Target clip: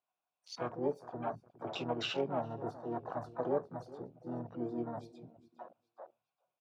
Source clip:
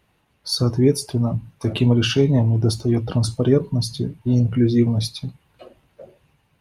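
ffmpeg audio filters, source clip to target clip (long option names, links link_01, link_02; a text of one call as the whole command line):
ffmpeg -i in.wav -filter_complex "[0:a]asplit=3[link_01][link_02][link_03];[link_01]bandpass=frequency=730:width_type=q:width=8,volume=0dB[link_04];[link_02]bandpass=frequency=1090:width_type=q:width=8,volume=-6dB[link_05];[link_03]bandpass=frequency=2440:width_type=q:width=8,volume=-9dB[link_06];[link_04][link_05][link_06]amix=inputs=3:normalize=0,asplit=2[link_07][link_08];[link_08]aecho=0:1:409|818|1227:0.15|0.0598|0.0239[link_09];[link_07][link_09]amix=inputs=2:normalize=0,asplit=3[link_10][link_11][link_12];[link_11]asetrate=58866,aresample=44100,atempo=0.749154,volume=-5dB[link_13];[link_12]asetrate=88200,aresample=44100,atempo=0.5,volume=-12dB[link_14];[link_10][link_13][link_14]amix=inputs=3:normalize=0,afwtdn=0.00398" out.wav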